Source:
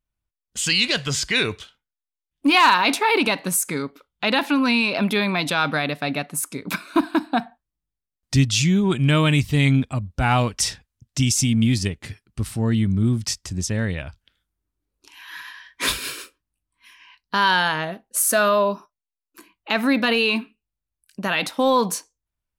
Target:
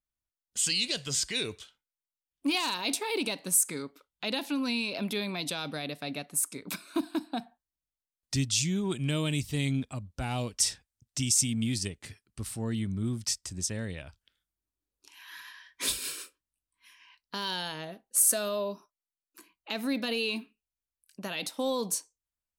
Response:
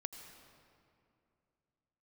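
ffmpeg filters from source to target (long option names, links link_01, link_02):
-filter_complex "[0:a]bass=frequency=250:gain=-4,treble=frequency=4000:gain=5,acrossover=split=680|2700[link_01][link_02][link_03];[link_02]acompressor=threshold=-36dB:ratio=6[link_04];[link_01][link_04][link_03]amix=inputs=3:normalize=0,adynamicequalizer=threshold=0.01:dfrequency=8400:dqfactor=5.3:tfrequency=8400:tqfactor=5.3:attack=5:release=100:ratio=0.375:range=3:mode=boostabove:tftype=bell,volume=-9dB"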